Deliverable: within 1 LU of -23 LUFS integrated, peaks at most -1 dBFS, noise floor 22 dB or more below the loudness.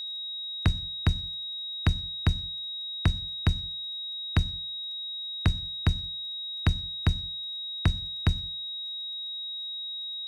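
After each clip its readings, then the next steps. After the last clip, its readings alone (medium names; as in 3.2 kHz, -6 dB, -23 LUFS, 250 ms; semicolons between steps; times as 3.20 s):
tick rate 23 per s; steady tone 3.8 kHz; tone level -33 dBFS; loudness -30.0 LUFS; peak level -13.5 dBFS; loudness target -23.0 LUFS
-> de-click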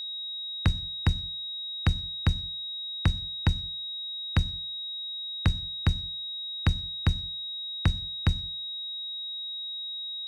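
tick rate 2.6 per s; steady tone 3.8 kHz; tone level -33 dBFS
-> band-stop 3.8 kHz, Q 30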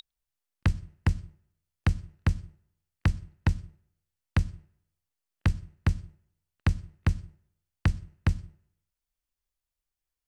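steady tone not found; loudness -31.5 LUFS; peak level -14.0 dBFS; loudness target -23.0 LUFS
-> trim +8.5 dB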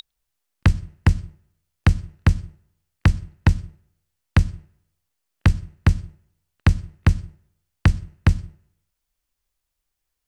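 loudness -23.0 LUFS; peak level -5.5 dBFS; noise floor -80 dBFS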